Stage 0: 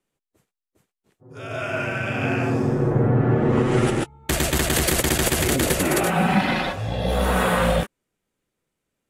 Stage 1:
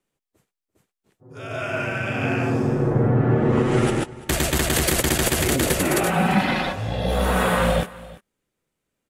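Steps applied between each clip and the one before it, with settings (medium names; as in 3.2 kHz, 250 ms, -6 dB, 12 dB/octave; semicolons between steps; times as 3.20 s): delay 342 ms -20 dB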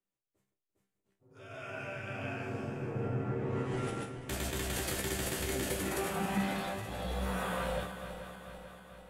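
backward echo that repeats 220 ms, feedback 77%, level -10.5 dB; chord resonator C2 fifth, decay 0.27 s; trim -6 dB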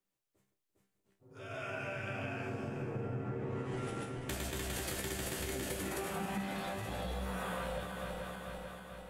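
compression 4:1, threshold -40 dBFS, peak gain reduction 10.5 dB; trim +3.5 dB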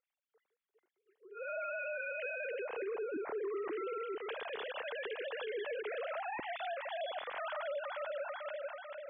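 formants replaced by sine waves; peak limiter -34.5 dBFS, peak gain reduction 9 dB; trim +2 dB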